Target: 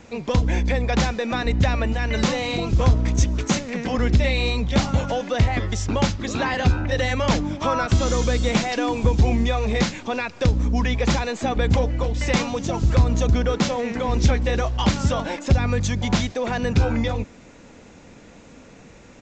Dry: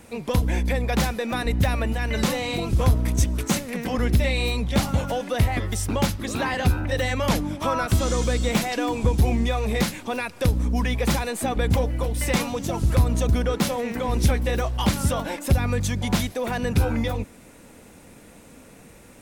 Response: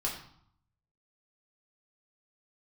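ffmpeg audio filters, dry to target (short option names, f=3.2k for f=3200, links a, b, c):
-af "aresample=16000,aresample=44100,volume=2dB"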